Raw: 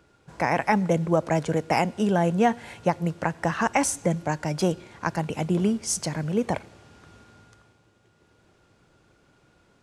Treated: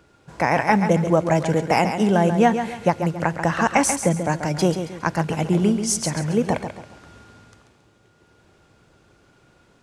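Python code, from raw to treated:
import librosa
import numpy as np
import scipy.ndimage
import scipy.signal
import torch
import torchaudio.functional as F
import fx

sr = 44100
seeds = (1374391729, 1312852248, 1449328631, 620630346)

y = fx.echo_feedback(x, sr, ms=137, feedback_pct=35, wet_db=-8.5)
y = F.gain(torch.from_numpy(y), 4.0).numpy()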